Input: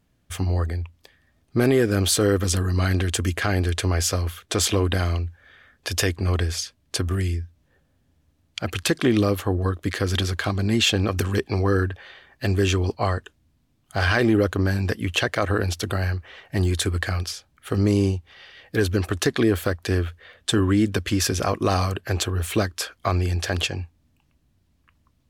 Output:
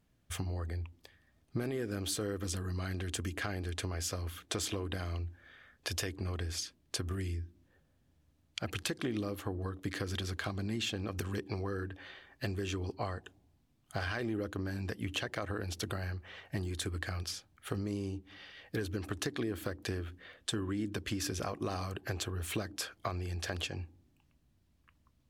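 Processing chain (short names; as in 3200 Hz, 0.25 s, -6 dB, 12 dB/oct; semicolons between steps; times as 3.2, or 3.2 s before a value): compressor 6:1, threshold -27 dBFS, peak gain reduction 12 dB; on a send: vocal tract filter u + reverb RT60 1.1 s, pre-delay 3 ms, DRR 27 dB; on the sum: gain -6 dB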